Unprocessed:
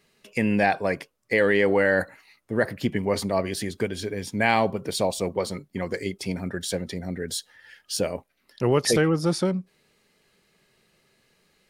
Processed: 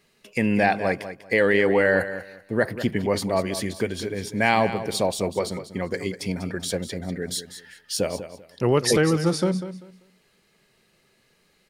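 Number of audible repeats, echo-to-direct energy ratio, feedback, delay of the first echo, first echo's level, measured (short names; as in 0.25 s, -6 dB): 2, -12.0 dB, 23%, 0.195 s, -12.0 dB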